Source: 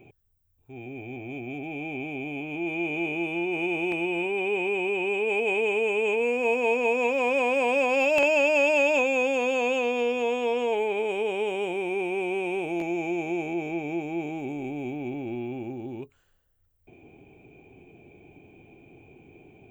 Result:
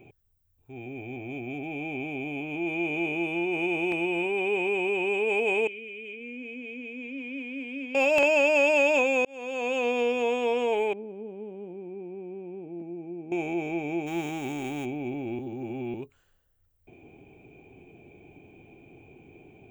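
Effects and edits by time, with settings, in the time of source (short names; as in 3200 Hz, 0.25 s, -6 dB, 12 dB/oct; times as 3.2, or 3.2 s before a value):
5.67–7.95 vowel filter i
9.25–9.89 fade in
10.93–13.32 band-pass 220 Hz, Q 2.7
14.06–14.84 spectral whitening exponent 0.6
15.39–15.94 reverse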